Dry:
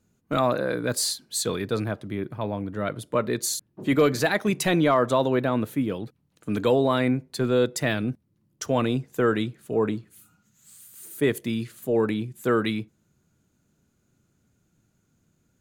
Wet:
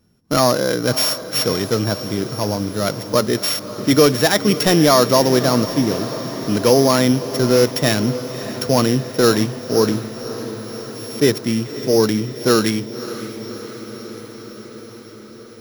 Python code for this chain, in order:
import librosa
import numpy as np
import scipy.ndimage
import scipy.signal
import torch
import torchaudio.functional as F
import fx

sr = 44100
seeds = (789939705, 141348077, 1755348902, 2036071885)

y = np.r_[np.sort(x[:len(x) // 8 * 8].reshape(-1, 8), axis=1).ravel(), x[len(x) // 8 * 8:]]
y = fx.echo_diffused(y, sr, ms=582, feedback_pct=71, wet_db=-13.0)
y = y * librosa.db_to_amplitude(7.5)